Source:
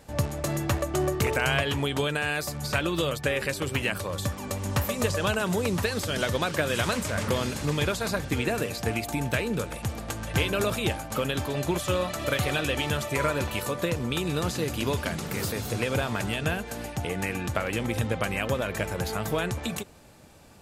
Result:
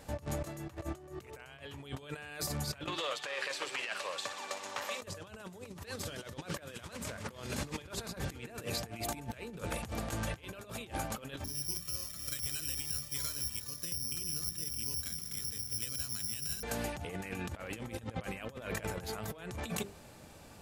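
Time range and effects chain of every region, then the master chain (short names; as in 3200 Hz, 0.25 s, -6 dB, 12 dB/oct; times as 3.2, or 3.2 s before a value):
2.86–5.02 tube stage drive 21 dB, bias 0.3 + BPF 700–5800 Hz + thin delay 60 ms, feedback 85%, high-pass 3200 Hz, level -10.5 dB
11.44–16.63 passive tone stack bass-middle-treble 6-0-2 + careless resampling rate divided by 8×, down filtered, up zero stuff + notches 60/120/180/240 Hz
whole clip: notches 50/100/150/200/250/300/350/400 Hz; negative-ratio compressor -34 dBFS, ratio -0.5; gain -5 dB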